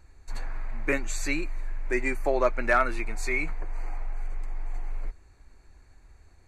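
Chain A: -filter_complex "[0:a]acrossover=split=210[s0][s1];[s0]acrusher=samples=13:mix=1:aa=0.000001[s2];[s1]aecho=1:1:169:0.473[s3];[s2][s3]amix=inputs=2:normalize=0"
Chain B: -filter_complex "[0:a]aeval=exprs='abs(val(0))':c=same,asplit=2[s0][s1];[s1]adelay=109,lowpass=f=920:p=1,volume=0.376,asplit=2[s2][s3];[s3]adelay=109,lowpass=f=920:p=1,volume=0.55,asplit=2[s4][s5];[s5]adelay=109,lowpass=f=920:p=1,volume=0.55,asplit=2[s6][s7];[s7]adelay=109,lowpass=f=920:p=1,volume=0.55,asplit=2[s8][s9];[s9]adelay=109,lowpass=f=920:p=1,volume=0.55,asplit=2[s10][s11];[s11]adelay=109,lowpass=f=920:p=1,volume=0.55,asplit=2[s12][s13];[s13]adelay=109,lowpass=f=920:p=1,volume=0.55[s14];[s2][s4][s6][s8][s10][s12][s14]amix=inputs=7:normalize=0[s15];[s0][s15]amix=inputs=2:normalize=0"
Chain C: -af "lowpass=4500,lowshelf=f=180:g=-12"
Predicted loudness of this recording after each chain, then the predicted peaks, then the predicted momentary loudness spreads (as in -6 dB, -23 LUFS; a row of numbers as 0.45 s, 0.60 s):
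-29.5 LUFS, -32.0 LUFS, -29.5 LUFS; -10.0 dBFS, -10.5 dBFS, -12.5 dBFS; 17 LU, 12 LU, 24 LU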